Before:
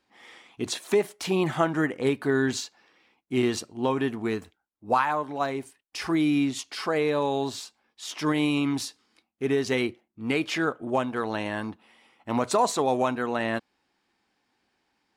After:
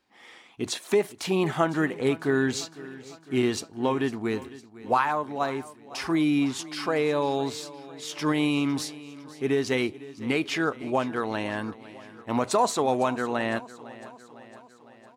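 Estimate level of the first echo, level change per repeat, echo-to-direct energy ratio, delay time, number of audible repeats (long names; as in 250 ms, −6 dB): −18.0 dB, −4.5 dB, −16.0 dB, 505 ms, 4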